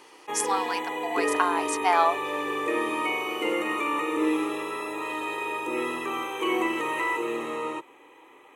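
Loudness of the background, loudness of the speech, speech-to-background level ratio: −28.5 LKFS, −27.5 LKFS, 1.0 dB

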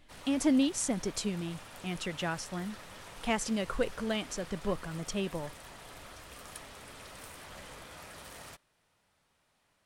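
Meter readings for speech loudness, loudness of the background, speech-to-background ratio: −33.5 LKFS, −48.0 LKFS, 14.5 dB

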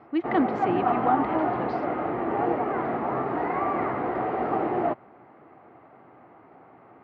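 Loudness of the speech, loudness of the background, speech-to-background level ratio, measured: −28.0 LKFS, −27.5 LKFS, −0.5 dB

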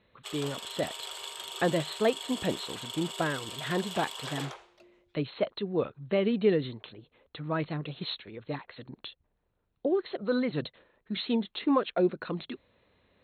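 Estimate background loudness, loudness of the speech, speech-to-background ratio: −39.0 LKFS, −32.0 LKFS, 7.0 dB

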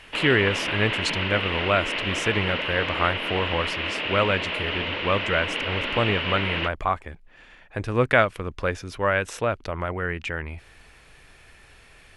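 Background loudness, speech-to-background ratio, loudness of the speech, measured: −26.5 LKFS, 0.5 dB, −26.0 LKFS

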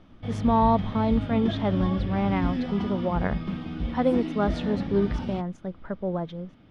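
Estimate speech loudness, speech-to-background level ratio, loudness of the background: −27.0 LKFS, 4.0 dB, −31.0 LKFS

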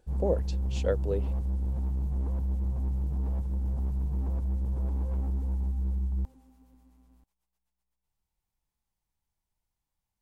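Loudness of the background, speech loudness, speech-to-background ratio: −32.0 LKFS, −32.5 LKFS, −0.5 dB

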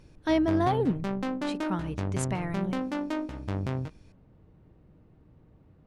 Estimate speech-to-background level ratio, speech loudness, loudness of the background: 3.0 dB, −30.0 LKFS, −33.0 LKFS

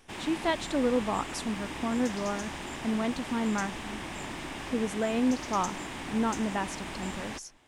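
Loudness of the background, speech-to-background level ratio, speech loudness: −38.0 LKFS, 6.5 dB, −31.5 LKFS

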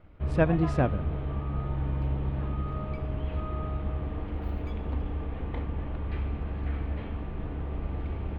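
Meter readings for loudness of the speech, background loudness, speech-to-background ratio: −28.0 LKFS, −33.5 LKFS, 5.5 dB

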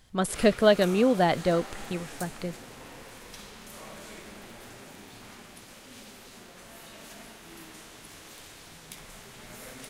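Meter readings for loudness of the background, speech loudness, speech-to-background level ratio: −44.0 LKFS, −25.0 LKFS, 19.0 dB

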